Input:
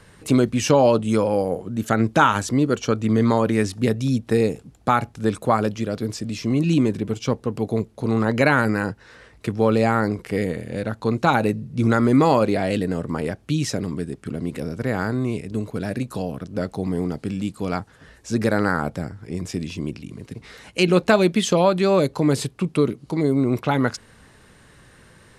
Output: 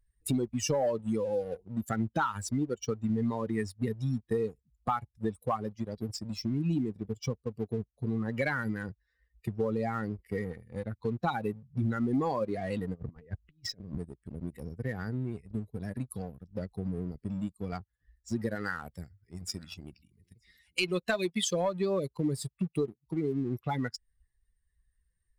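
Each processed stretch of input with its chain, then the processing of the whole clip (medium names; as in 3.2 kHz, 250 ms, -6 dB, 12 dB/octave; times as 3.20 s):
12.94–13.98 s: compressor with a negative ratio -29 dBFS, ratio -0.5 + distance through air 100 m
18.55–21.54 s: tilt shelf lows -3.5 dB, about 910 Hz + delay 927 ms -17 dB
whole clip: expander on every frequency bin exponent 2; waveshaping leveller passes 1; compression 3:1, threshold -33 dBFS; trim +1.5 dB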